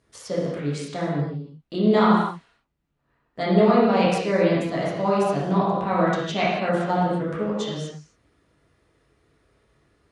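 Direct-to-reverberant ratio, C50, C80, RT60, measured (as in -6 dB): -8.0 dB, -1.0 dB, 1.5 dB, no single decay rate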